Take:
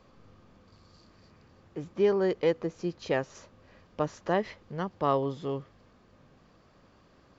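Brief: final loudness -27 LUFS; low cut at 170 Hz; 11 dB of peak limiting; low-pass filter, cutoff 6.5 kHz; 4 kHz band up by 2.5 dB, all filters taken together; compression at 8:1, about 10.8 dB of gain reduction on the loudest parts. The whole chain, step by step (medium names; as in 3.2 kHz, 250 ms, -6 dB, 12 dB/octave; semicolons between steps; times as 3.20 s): high-pass 170 Hz; low-pass 6.5 kHz; peaking EQ 4 kHz +4 dB; compression 8:1, threshold -31 dBFS; trim +15 dB; peak limiter -14.5 dBFS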